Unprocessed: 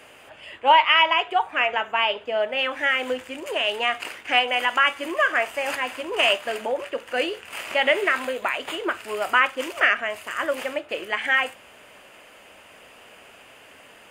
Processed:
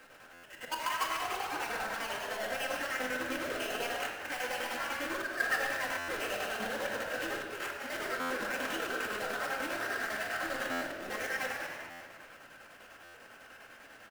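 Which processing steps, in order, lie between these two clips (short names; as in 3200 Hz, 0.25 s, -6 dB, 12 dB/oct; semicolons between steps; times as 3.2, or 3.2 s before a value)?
half-waves squared off; bell 1500 Hz +11 dB 0.46 oct; de-hum 89.63 Hz, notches 9; limiter -13 dBFS, peak gain reduction 14 dB; level quantiser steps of 18 dB; frequency-shifting echo 0.146 s, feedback 53%, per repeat +78 Hz, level -4 dB; chopper 10 Hz, depth 65%, duty 65%; auto swell 0.234 s; shoebox room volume 1700 m³, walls mixed, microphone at 2.1 m; stuck buffer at 0.33/5.98/8.2/10.71/11.9/13.04, samples 512, times 8; gain -3.5 dB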